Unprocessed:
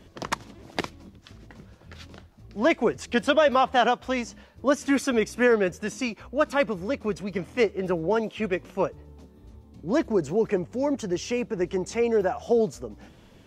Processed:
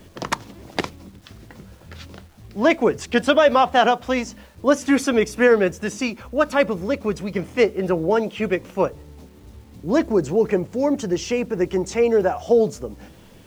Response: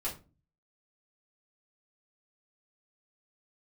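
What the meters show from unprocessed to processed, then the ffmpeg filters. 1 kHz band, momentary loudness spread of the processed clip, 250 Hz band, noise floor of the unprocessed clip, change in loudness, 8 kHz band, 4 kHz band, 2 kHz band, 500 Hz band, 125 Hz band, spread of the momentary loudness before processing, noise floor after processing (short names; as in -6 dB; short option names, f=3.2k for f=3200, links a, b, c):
+5.0 dB, 12 LU, +5.0 dB, -53 dBFS, +5.0 dB, +4.5 dB, +4.5 dB, +4.5 dB, +5.5 dB, +5.0 dB, 12 LU, -47 dBFS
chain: -filter_complex "[0:a]acrusher=bits=9:mix=0:aa=0.000001,asplit=2[a][b];[b]lowpass=1.1k[c];[1:a]atrim=start_sample=2205,asetrate=61740,aresample=44100[d];[c][d]afir=irnorm=-1:irlink=0,volume=-14.5dB[e];[a][e]amix=inputs=2:normalize=0,volume=4.5dB"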